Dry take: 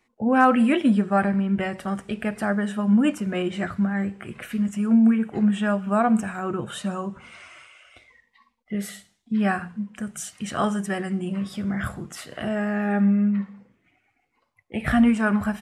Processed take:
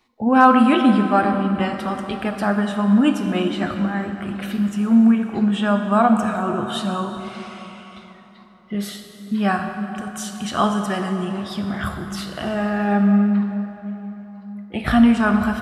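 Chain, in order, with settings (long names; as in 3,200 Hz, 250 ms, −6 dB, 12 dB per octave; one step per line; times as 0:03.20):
octave-band graphic EQ 125/500/1,000/2,000/4,000/8,000 Hz −5/−4/+4/−7/+8/−7 dB
dense smooth reverb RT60 3.9 s, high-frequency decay 0.6×, DRR 5.5 dB
level +5 dB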